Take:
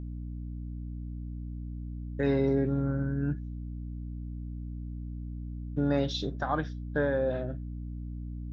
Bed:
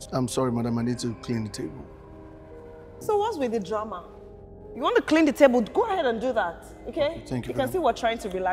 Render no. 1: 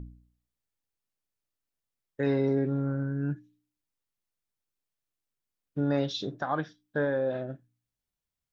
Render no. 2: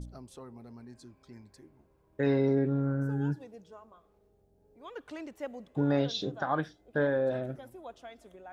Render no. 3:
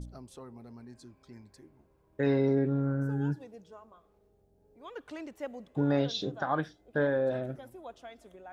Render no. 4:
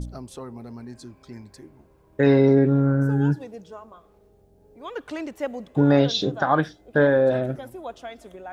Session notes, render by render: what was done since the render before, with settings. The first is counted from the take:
de-hum 60 Hz, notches 5
add bed -22.5 dB
nothing audible
gain +10 dB

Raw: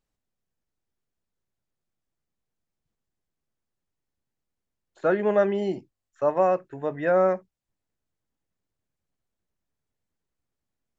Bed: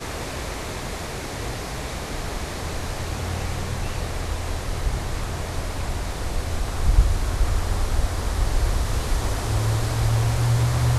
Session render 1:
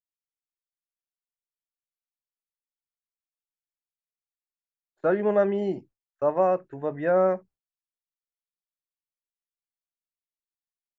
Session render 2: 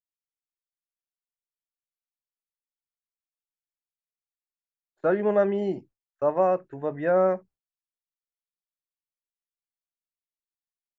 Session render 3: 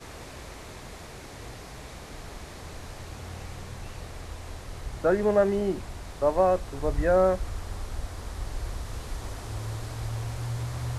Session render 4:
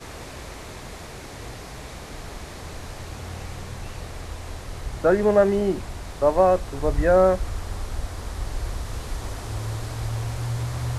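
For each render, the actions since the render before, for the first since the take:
expander -46 dBFS; high shelf 2100 Hz -8.5 dB
nothing audible
add bed -12 dB
gain +4.5 dB

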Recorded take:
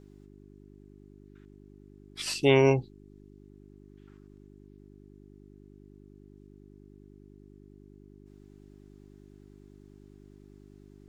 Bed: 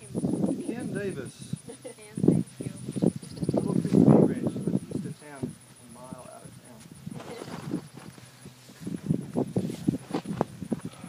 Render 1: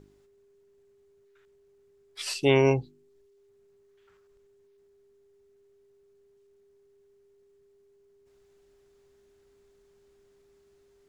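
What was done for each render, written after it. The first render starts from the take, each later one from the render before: de-hum 50 Hz, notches 7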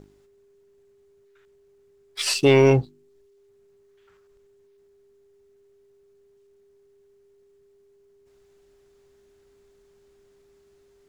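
in parallel at -1 dB: limiter -16 dBFS, peak gain reduction 8.5 dB; on the sum: sample leveller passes 1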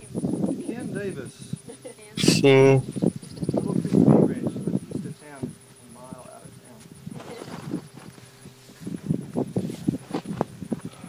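add bed +1.5 dB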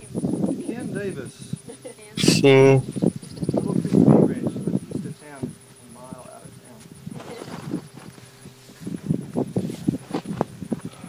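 gain +2 dB; limiter -1 dBFS, peak gain reduction 0.5 dB

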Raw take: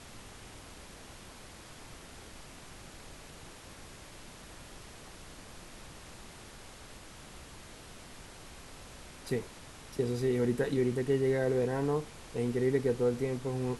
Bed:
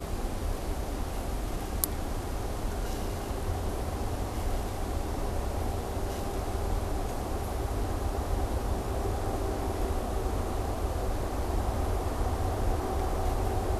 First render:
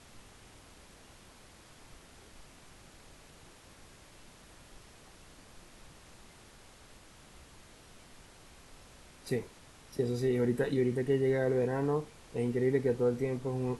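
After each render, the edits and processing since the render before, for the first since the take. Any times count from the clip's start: noise print and reduce 6 dB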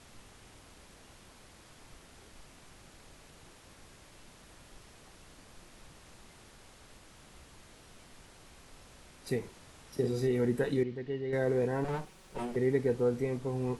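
9.39–10.27 doubler 47 ms -7 dB; 10.83–11.33 ladder low-pass 5000 Hz, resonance 35%; 11.84–12.56 minimum comb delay 5.3 ms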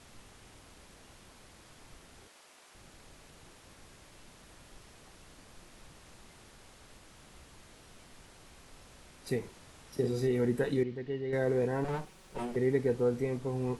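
2.27–2.75 HPF 450 Hz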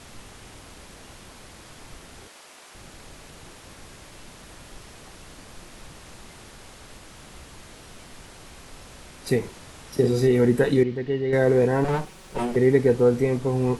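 gain +10.5 dB

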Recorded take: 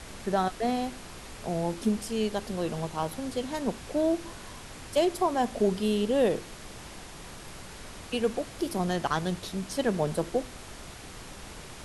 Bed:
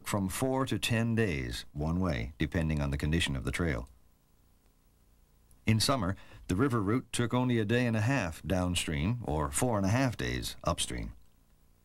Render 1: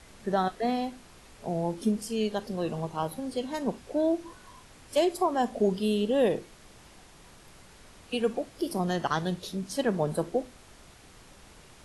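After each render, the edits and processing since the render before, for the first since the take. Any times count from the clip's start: noise print and reduce 9 dB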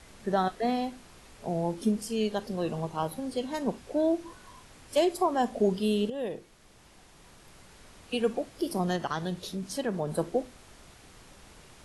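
6.1–8.27 fade in equal-power, from -12 dB; 8.96–10.18 compressor 1.5:1, threshold -32 dBFS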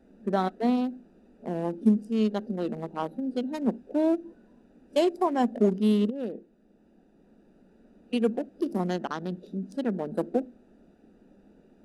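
Wiener smoothing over 41 samples; resonant low shelf 160 Hz -10.5 dB, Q 3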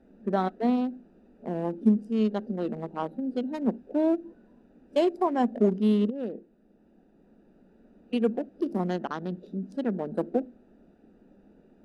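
high shelf 5000 Hz -11 dB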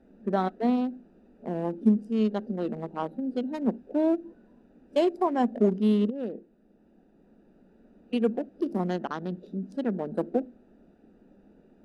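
nothing audible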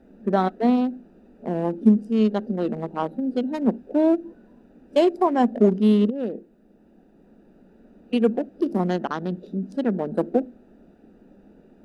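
gain +5.5 dB

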